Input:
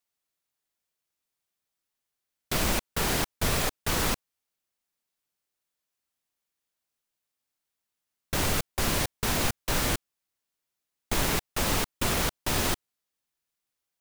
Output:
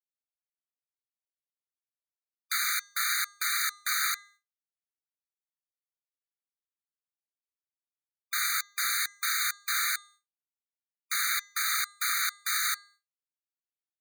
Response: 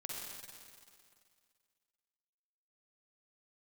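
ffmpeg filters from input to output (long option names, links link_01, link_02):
-af "bandreject=frequency=405.6:width_type=h:width=4,bandreject=frequency=811.2:width_type=h:width=4,bandreject=frequency=1216.8:width_type=h:width=4,bandreject=frequency=1622.4:width_type=h:width=4,bandreject=frequency=2028:width_type=h:width=4,bandreject=frequency=2433.6:width_type=h:width=4,bandreject=frequency=2839.2:width_type=h:width=4,bandreject=frequency=3244.8:width_type=h:width=4,bandreject=frequency=3650.4:width_type=h:width=4,bandreject=frequency=4056:width_type=h:width=4,bandreject=frequency=4461.6:width_type=h:width=4,bandreject=frequency=4867.2:width_type=h:width=4,bandreject=frequency=5272.8:width_type=h:width=4,bandreject=frequency=5678.4:width_type=h:width=4,bandreject=frequency=6084:width_type=h:width=4,bandreject=frequency=6489.6:width_type=h:width=4,bandreject=frequency=6895.2:width_type=h:width=4,bandreject=frequency=7300.8:width_type=h:width=4,bandreject=frequency=7706.4:width_type=h:width=4,bandreject=frequency=8112:width_type=h:width=4,bandreject=frequency=8517.6:width_type=h:width=4,agate=range=-33dB:threshold=-50dB:ratio=3:detection=peak,afftfilt=real='re*eq(mod(floor(b*sr/1024/1200),2),1)':imag='im*eq(mod(floor(b*sr/1024/1200),2),1)':win_size=1024:overlap=0.75,volume=4dB"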